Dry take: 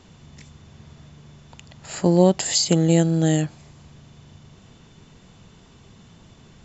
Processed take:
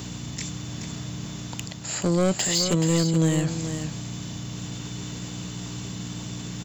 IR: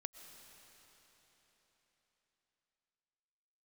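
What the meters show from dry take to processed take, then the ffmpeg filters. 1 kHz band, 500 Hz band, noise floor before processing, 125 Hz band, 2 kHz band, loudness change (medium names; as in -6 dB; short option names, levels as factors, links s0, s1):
-4.0 dB, -5.5 dB, -51 dBFS, -2.0 dB, +2.0 dB, -8.0 dB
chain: -filter_complex "[0:a]acrossover=split=3800[s0][s1];[s1]acompressor=threshold=0.0126:ratio=4:attack=1:release=60[s2];[s0][s2]amix=inputs=2:normalize=0,aeval=exprs='val(0)+0.01*(sin(2*PI*60*n/s)+sin(2*PI*2*60*n/s)/2+sin(2*PI*3*60*n/s)/3+sin(2*PI*4*60*n/s)/4+sin(2*PI*5*60*n/s)/5)':c=same,highpass=f=88:w=0.5412,highpass=f=88:w=1.3066,areverse,acompressor=mode=upward:threshold=0.0708:ratio=2.5,areverse,aemphasis=mode=production:type=75fm,asoftclip=type=tanh:threshold=0.15,asplit=2[s3][s4];[s4]aecho=0:1:427:0.398[s5];[s3][s5]amix=inputs=2:normalize=0"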